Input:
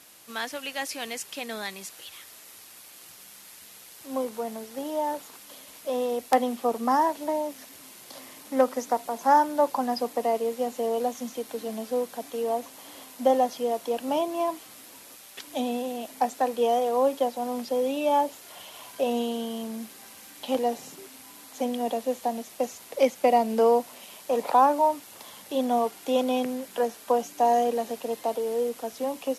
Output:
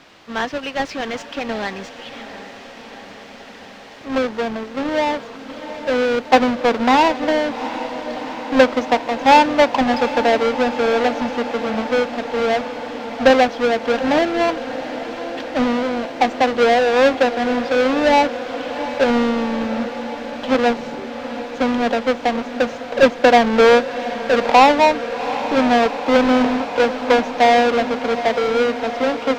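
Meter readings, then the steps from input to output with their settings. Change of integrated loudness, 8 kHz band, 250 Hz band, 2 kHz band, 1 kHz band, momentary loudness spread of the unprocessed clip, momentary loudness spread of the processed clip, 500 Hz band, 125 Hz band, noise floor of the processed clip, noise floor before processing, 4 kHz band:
+9.5 dB, +2.0 dB, +11.5 dB, +18.5 dB, +8.5 dB, 22 LU, 15 LU, +9.5 dB, no reading, -38 dBFS, -49 dBFS, +13.0 dB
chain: square wave that keeps the level; distance through air 190 m; echo that smears into a reverb 755 ms, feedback 75%, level -12.5 dB; trim +6.5 dB

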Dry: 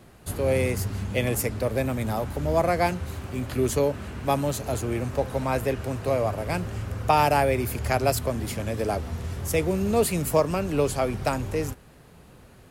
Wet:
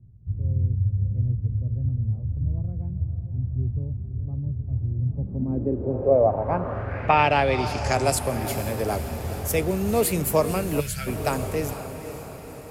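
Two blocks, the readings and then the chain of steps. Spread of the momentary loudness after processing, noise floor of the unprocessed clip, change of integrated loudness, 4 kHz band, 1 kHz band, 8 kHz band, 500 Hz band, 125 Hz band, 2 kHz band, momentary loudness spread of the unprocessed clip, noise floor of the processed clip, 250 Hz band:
11 LU, -51 dBFS, +1.0 dB, 0.0 dB, 0.0 dB, +0.5 dB, -0.5 dB, +4.0 dB, +0.5 dB, 8 LU, -38 dBFS, -0.5 dB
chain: echo that smears into a reverb 482 ms, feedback 59%, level -10.5 dB; low-pass sweep 110 Hz -> 14 kHz, 4.94–8.44 s; time-frequency box 10.80–11.07 s, 200–1300 Hz -21 dB

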